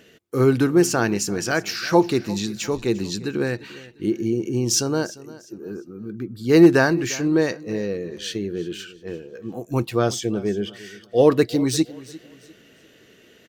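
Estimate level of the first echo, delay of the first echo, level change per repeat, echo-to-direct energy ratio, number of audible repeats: -19.0 dB, 0.349 s, -10.0 dB, -18.5 dB, 2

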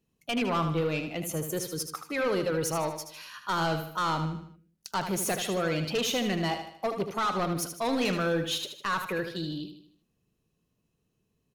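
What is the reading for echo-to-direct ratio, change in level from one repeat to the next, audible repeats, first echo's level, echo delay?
-7.0 dB, -7.0 dB, 4, -8.0 dB, 77 ms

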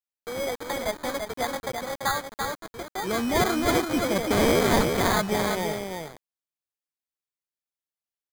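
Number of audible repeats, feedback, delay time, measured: 1, no steady repeat, 0.338 s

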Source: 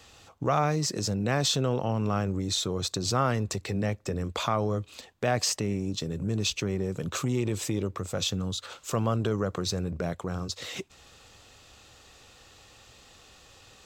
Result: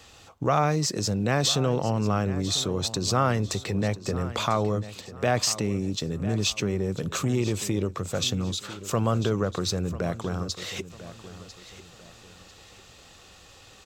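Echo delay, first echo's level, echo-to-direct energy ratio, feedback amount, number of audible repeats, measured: 0.996 s, -15.0 dB, -14.5 dB, 34%, 3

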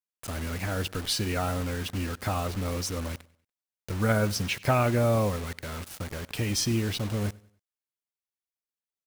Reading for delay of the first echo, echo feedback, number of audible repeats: 96 ms, 38%, 2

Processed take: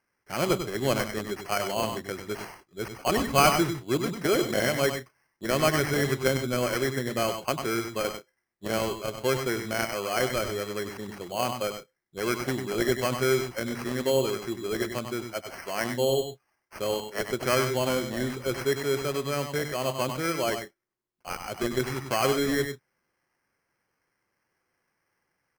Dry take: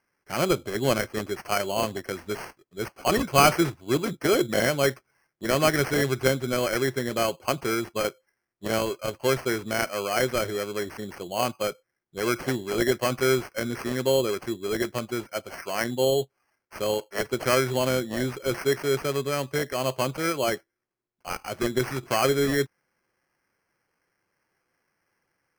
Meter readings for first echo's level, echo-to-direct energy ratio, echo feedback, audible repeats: -6.5 dB, -6.5 dB, no steady repeat, 2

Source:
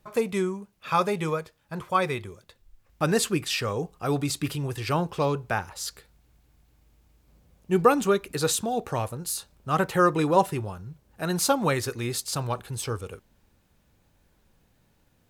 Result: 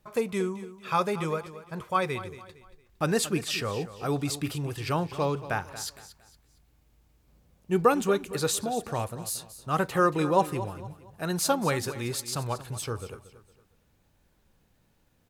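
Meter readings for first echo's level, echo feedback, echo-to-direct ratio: -14.5 dB, 35%, -14.0 dB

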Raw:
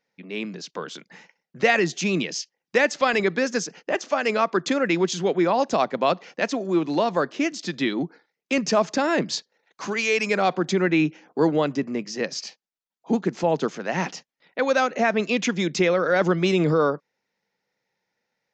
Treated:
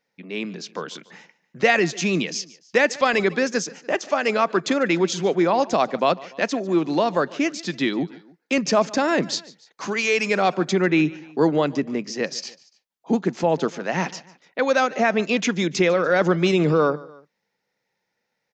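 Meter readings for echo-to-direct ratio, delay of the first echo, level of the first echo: -20.0 dB, 0.146 s, -21.0 dB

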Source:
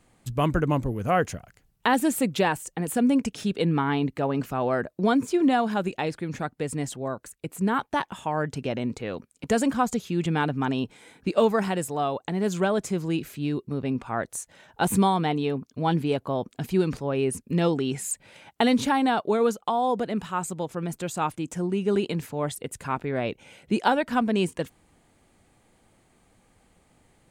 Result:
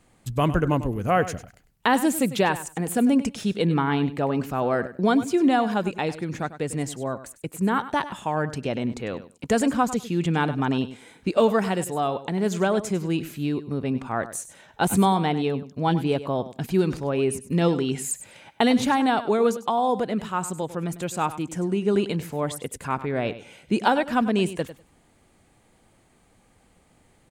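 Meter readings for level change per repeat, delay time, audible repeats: -16.0 dB, 99 ms, 2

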